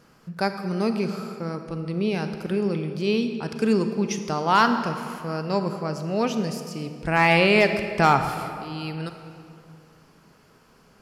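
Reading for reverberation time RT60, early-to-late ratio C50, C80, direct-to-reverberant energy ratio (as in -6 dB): 2.5 s, 8.0 dB, 9.0 dB, 7.5 dB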